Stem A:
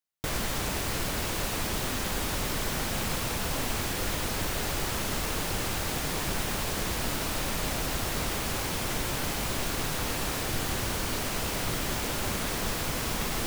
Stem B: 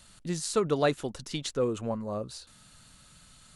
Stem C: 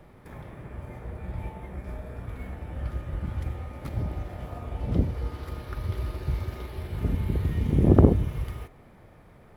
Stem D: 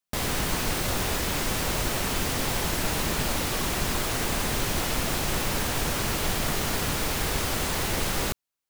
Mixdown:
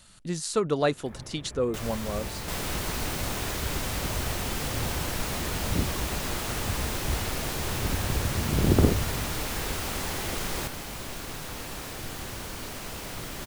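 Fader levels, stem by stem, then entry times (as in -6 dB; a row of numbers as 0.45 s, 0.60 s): -6.5 dB, +1.0 dB, -4.0 dB, -5.5 dB; 1.50 s, 0.00 s, 0.80 s, 2.35 s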